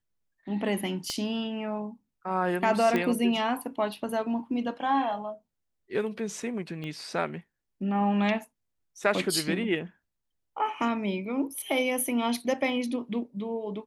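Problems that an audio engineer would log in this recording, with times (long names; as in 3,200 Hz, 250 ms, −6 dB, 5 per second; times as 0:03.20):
0:01.10: click −18 dBFS
0:02.96: click −15 dBFS
0:06.84: click −26 dBFS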